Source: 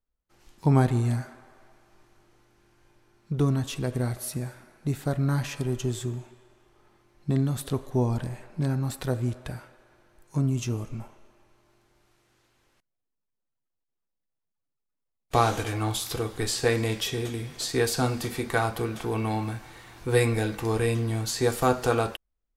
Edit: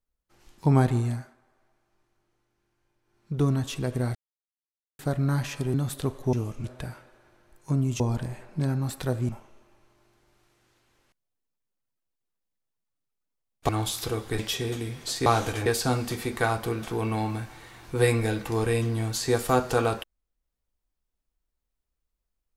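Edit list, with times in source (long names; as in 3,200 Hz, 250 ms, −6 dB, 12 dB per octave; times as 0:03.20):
0:00.95–0:03.43: duck −13 dB, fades 0.40 s
0:04.15–0:04.99: silence
0:05.74–0:07.42: remove
0:08.01–0:09.30: swap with 0:10.66–0:10.97
0:15.37–0:15.77: move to 0:17.79
0:16.47–0:16.92: remove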